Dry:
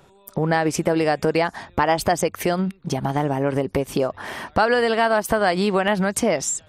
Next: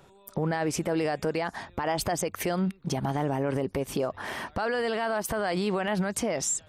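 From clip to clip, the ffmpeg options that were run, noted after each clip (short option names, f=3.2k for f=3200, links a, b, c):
-af "alimiter=limit=-16.5dB:level=0:latency=1:release=22,volume=-3dB"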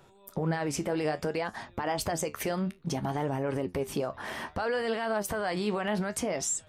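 -af "flanger=delay=8:depth=7.2:regen=63:speed=0.6:shape=triangular,volume=2dB"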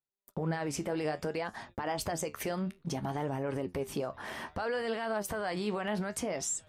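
-af "agate=range=-42dB:threshold=-48dB:ratio=16:detection=peak,volume=-3.5dB"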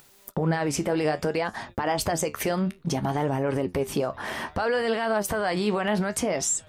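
-af "acompressor=mode=upward:threshold=-40dB:ratio=2.5,volume=8.5dB"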